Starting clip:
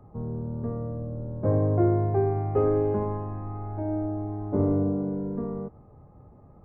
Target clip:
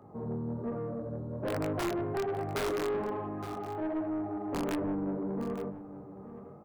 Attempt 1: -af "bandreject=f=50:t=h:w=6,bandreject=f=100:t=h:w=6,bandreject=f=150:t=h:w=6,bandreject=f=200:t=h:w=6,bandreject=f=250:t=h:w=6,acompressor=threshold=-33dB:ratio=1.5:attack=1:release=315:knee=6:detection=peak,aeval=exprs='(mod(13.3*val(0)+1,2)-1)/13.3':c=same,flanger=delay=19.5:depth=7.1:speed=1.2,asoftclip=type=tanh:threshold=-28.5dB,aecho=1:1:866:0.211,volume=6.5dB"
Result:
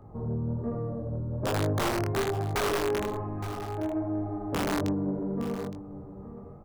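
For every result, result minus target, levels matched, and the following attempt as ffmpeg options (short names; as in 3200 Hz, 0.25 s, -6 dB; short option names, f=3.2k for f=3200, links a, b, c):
soft clip: distortion -7 dB; 125 Hz band +4.5 dB
-af "bandreject=f=50:t=h:w=6,bandreject=f=100:t=h:w=6,bandreject=f=150:t=h:w=6,bandreject=f=200:t=h:w=6,bandreject=f=250:t=h:w=6,acompressor=threshold=-33dB:ratio=1.5:attack=1:release=315:knee=6:detection=peak,aeval=exprs='(mod(13.3*val(0)+1,2)-1)/13.3':c=same,flanger=delay=19.5:depth=7.1:speed=1.2,asoftclip=type=tanh:threshold=-35.5dB,aecho=1:1:866:0.211,volume=6.5dB"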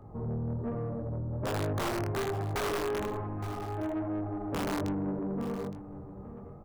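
125 Hz band +5.0 dB
-af "bandreject=f=50:t=h:w=6,bandreject=f=100:t=h:w=6,bandreject=f=150:t=h:w=6,bandreject=f=200:t=h:w=6,bandreject=f=250:t=h:w=6,acompressor=threshold=-33dB:ratio=1.5:attack=1:release=315:knee=6:detection=peak,highpass=170,aeval=exprs='(mod(13.3*val(0)+1,2)-1)/13.3':c=same,flanger=delay=19.5:depth=7.1:speed=1.2,asoftclip=type=tanh:threshold=-35.5dB,aecho=1:1:866:0.211,volume=6.5dB"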